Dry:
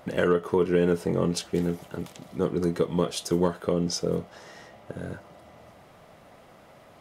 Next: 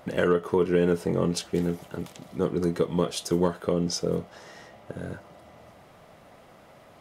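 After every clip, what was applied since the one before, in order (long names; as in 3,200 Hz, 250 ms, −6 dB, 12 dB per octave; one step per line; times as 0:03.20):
no processing that can be heard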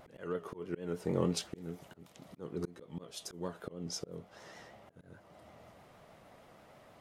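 pitch vibrato 6.4 Hz 73 cents
volume swells 409 ms
level −6 dB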